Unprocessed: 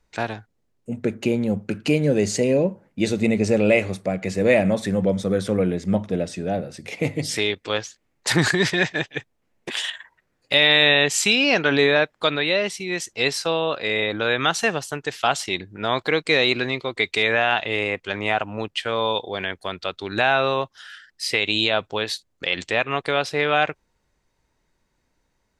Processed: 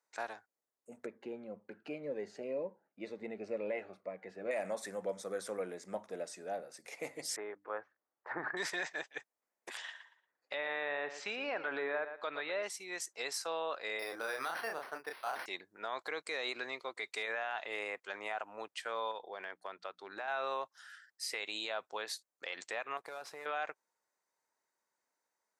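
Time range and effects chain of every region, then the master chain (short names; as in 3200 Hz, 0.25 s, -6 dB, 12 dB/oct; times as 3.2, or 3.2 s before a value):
1.06–4.51 air absorption 380 m + cascading phaser falling 2 Hz
7.36–8.57 LPF 1600 Hz 24 dB/oct + notches 50/100/150/200/250/300 Hz
9.77–12.63 treble ducked by the level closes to 2000 Hz, closed at -13 dBFS + air absorption 150 m + feedback echo 0.116 s, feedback 24%, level -13 dB
13.99–15.46 doubler 31 ms -5 dB + decimation joined by straight lines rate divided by 6×
19.11–20.28 LPF 2400 Hz 6 dB/oct + compressor, threshold -23 dBFS + notches 60/120/180/240/300 Hz
22.97–23.46 CVSD 64 kbps + tone controls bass +6 dB, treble -8 dB + compressor, threshold -27 dBFS
whole clip: Bessel high-pass 940 Hz, order 2; bell 3100 Hz -13 dB 1.3 oct; limiter -21.5 dBFS; gain -6 dB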